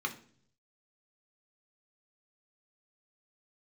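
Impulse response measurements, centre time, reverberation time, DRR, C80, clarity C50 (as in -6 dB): 10 ms, 0.55 s, 2.0 dB, 18.0 dB, 13.5 dB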